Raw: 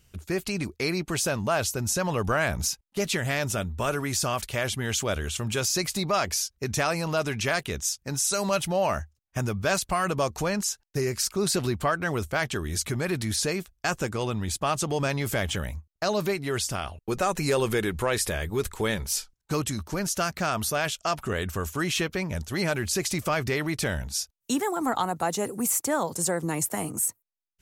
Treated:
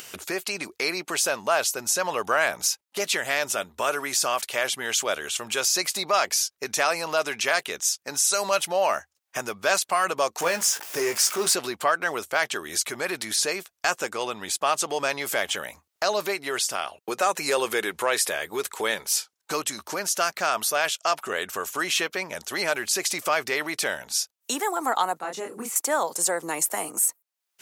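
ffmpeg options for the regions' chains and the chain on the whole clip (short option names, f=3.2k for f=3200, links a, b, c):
-filter_complex "[0:a]asettb=1/sr,asplit=3[a][b][c];[a]atrim=end=10.404[d];[b]atrim=start=10.4:end=11.54,asetpts=PTS-STARTPTS,afade=t=in:d=0.004:c=qsin,afade=t=out:st=1.136:d=0.004:c=qsin,aeval=exprs='val(0)+0.5*0.0282*sgn(val(0))':c=same,equalizer=f=4.1k:w=6.7:g=-6,asplit=2[e][f];[f]adelay=18,volume=-8dB[g];[e][g]amix=inputs=2:normalize=0,atrim=end_sample=50274[h];[c]atrim=start=11.536[i];[d][h]acrossfade=d=0.004:c1=hsin:c2=qsin[j];[j][i]acrossfade=d=0.004:c1=qsin:c2=hsin,asettb=1/sr,asplit=3[k][l][m];[k]atrim=end=25.194[n];[l]atrim=start=25.19:end=25.76,asetpts=PTS-STARTPTS,afade=t=in:d=0.004:c=qsin,afade=t=out:st=0.566:d=0.004:c=qsin,lowpass=f=1.3k:p=1,equalizer=f=700:t=o:w=1.8:g=-10,asplit=2[o][p];[p]adelay=27,volume=-3.5dB[q];[o][q]amix=inputs=2:normalize=0,atrim=end_sample=25137[r];[m]atrim=start=25.756[s];[n][r]acrossfade=d=0.004:c1=hsin:c2=qsin[t];[t][s]acrossfade=d=0.004:c1=qsin:c2=hsin,highpass=520,acompressor=mode=upward:threshold=-31dB:ratio=2.5,volume=4dB"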